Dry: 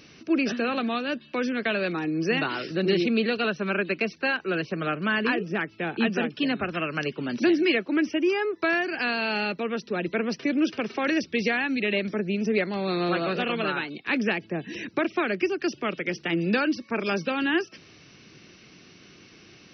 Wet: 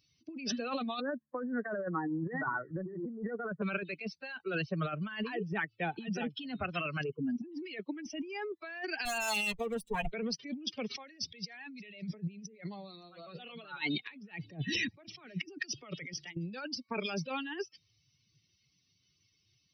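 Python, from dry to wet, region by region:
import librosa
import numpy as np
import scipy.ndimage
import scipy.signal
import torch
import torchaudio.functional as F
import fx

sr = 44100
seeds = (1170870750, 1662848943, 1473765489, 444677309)

y = fx.chain(x, sr, fx.steep_lowpass(hz=1900.0, slope=96),
    fx.hum_notches(base_hz=50, count=3), at=(1.0, 3.62))
y = fx.chain(y, sr, fx.spec_expand(power=1.6),
    fx.peak_eq(hz=3900.0, db=-10.0, octaves=0.27), at=(7.03, 7.52))
y = fx.chain(y, sr, fx.lower_of_two(delay_ms=4.4),
    fx.peak_eq(hz=4600.0, db=-6.5, octaves=0.61), at=(9.05, 10.13))
y = fx.chain(y, sr, fx.highpass(hz=55.0, slope=12),
    fx.over_compress(threshold_db=-36.0, ratio=-1.0),
    fx.echo_single(ms=567, db=-18.5), at=(10.91, 16.37))
y = fx.bin_expand(y, sr, power=2.0)
y = fx.high_shelf(y, sr, hz=2300.0, db=5.5)
y = fx.over_compress(y, sr, threshold_db=-37.0, ratio=-1.0)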